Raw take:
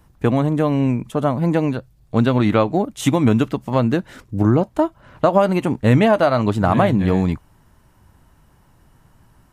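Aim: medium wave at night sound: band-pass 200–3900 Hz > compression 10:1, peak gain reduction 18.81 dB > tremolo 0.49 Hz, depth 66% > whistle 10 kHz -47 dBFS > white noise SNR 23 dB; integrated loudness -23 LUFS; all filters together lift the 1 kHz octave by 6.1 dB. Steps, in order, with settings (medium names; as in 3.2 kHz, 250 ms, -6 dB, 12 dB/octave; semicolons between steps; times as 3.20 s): band-pass 200–3900 Hz; peaking EQ 1 kHz +8 dB; compression 10:1, threshold -24 dBFS; tremolo 0.49 Hz, depth 66%; whistle 10 kHz -47 dBFS; white noise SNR 23 dB; trim +10 dB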